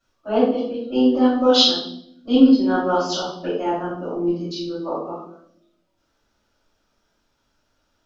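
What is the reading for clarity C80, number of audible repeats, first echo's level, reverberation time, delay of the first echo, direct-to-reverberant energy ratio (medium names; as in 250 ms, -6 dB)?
6.5 dB, no echo, no echo, 0.70 s, no echo, -11.5 dB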